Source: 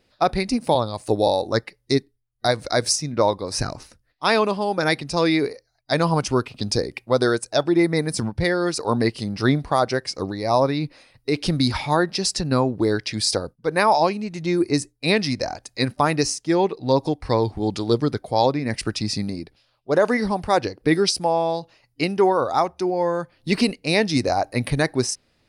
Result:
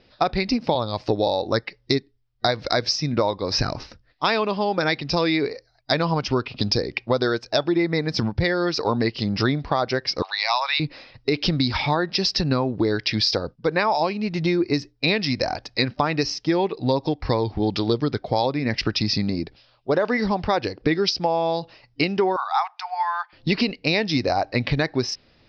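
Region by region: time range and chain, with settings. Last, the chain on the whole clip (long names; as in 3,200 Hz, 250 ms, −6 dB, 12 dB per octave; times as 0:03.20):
0:10.22–0:10.80: Butterworth high-pass 800 Hz + parametric band 2,900 Hz +11.5 dB 1.1 octaves
0:22.36–0:23.33: Butterworth high-pass 770 Hz 72 dB per octave + high-frequency loss of the air 120 metres
whole clip: Chebyshev low-pass filter 5,400 Hz, order 5; dynamic equaliser 2,800 Hz, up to +4 dB, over −39 dBFS, Q 0.7; downward compressor 4 to 1, threshold −27 dBFS; level +7.5 dB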